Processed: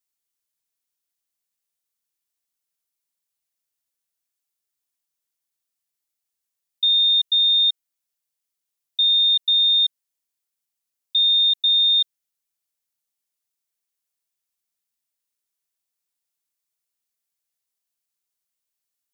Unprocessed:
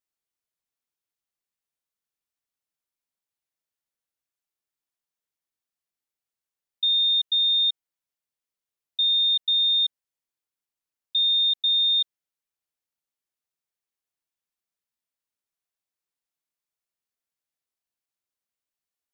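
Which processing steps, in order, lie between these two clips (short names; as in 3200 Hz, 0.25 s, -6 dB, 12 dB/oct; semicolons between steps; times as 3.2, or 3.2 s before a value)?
high shelf 3500 Hz +10.5 dB; gain -1.5 dB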